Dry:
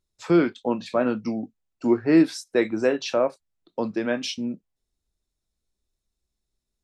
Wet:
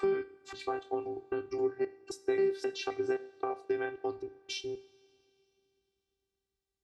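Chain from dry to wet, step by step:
slices reordered back to front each 264 ms, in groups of 2
downward compressor 4 to 1, threshold −27 dBFS, peak gain reduction 12.5 dB
coupled-rooms reverb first 0.48 s, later 3.1 s, from −18 dB, DRR 12 dB
phases set to zero 389 Hz
high-pass filter 65 Hz
high-shelf EQ 3,800 Hz −8.5 dB

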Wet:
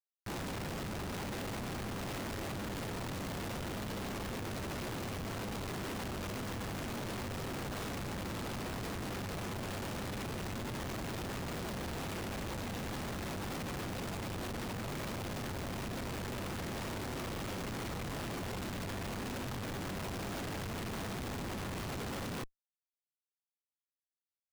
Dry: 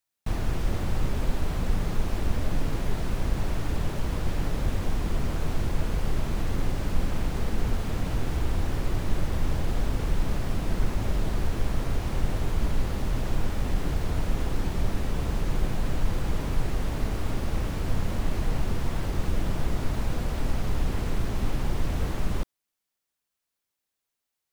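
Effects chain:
high-pass filter 120 Hz 24 dB per octave
comb filter 6.6 ms, depth 63%
brickwall limiter −31.5 dBFS, peak gain reduction 12 dB
ring modulation 49 Hz
comparator with hysteresis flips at −54 dBFS
level +3.5 dB

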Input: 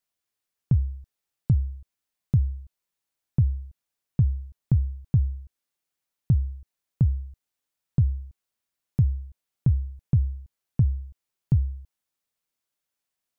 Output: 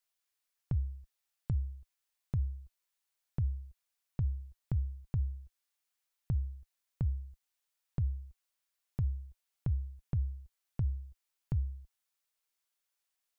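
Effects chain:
parametric band 160 Hz −14.5 dB 2.9 octaves

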